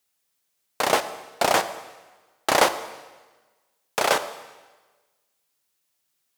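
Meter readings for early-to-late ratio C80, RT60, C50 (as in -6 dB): 14.5 dB, 1.3 s, 13.0 dB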